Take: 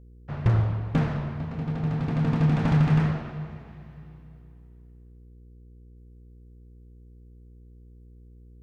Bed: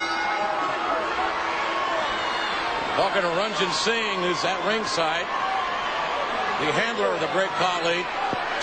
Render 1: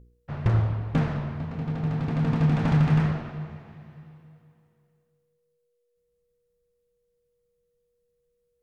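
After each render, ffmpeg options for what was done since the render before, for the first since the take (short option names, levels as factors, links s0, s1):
-af "bandreject=f=60:t=h:w=4,bandreject=f=120:t=h:w=4,bandreject=f=180:t=h:w=4,bandreject=f=240:t=h:w=4,bandreject=f=300:t=h:w=4,bandreject=f=360:t=h:w=4,bandreject=f=420:t=h:w=4"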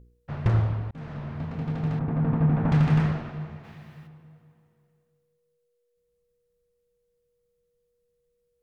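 -filter_complex "[0:a]asettb=1/sr,asplit=3[s0][s1][s2];[s0]atrim=end=1.994[s3];[s1]atrim=start=1.99:end=2.72,asetpts=PTS-STARTPTS,afade=t=in:d=0.004:c=qsin,afade=t=out:st=0.726:d=0.004:c=qsin,lowpass=1400[s4];[s2]atrim=start=2.716[s5];[s3][s4]acrossfade=d=0.004:c1=hsin:c2=qsin[s6];[s6][s5]acrossfade=d=0.004:c1=qsin:c2=hsin,asplit=3[s7][s8][s9];[s7]afade=t=out:st=3.63:d=0.02[s10];[s8]highshelf=f=2100:g=11.5,afade=t=in:st=3.63:d=0.02,afade=t=out:st=4.06:d=0.02[s11];[s9]afade=t=in:st=4.06:d=0.02[s12];[s10][s11][s12]amix=inputs=3:normalize=0,asplit=2[s13][s14];[s13]atrim=end=0.91,asetpts=PTS-STARTPTS,afade=t=out:st=0.906:d=0.004:c=hsin[s15];[s14]atrim=start=0.91,asetpts=PTS-STARTPTS,afade=t=in:d=0.53[s16];[s15][s16]concat=n=2:v=0:a=1"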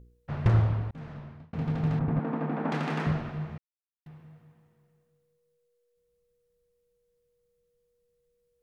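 -filter_complex "[0:a]asettb=1/sr,asplit=3[s0][s1][s2];[s0]atrim=end=2.194[s3];[s1]atrim=start=2.19:end=3.07,asetpts=PTS-STARTPTS,afade=t=in:d=0.004:c=qsin,afade=t=out:st=0.876:d=0.004:c=qsin,highpass=f=230:w=0.5412,highpass=f=230:w=1.3066[s4];[s2]atrim=start=3.066[s5];[s3][s4]acrossfade=d=0.004:c1=hsin:c2=qsin[s6];[s6][s5]acrossfade=d=0.004:c1=qsin:c2=hsin,asplit=4[s7][s8][s9][s10];[s7]atrim=end=1.53,asetpts=PTS-STARTPTS,afade=t=out:st=0.8:d=0.73[s11];[s8]atrim=start=1.53:end=3.58,asetpts=PTS-STARTPTS,afade=t=in:d=0.004:c=hsin,afade=t=out:st=2.046:d=0.004:c=hsin[s12];[s9]atrim=start=3.58:end=4.06,asetpts=PTS-STARTPTS,volume=0[s13];[s10]atrim=start=4.06,asetpts=PTS-STARTPTS,afade=t=in:d=0.004:c=hsin[s14];[s11][s12][s13][s14]concat=n=4:v=0:a=1"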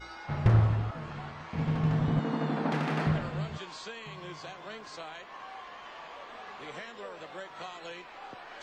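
-filter_complex "[1:a]volume=0.106[s0];[0:a][s0]amix=inputs=2:normalize=0"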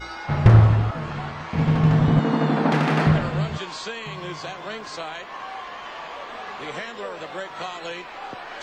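-af "volume=3.16"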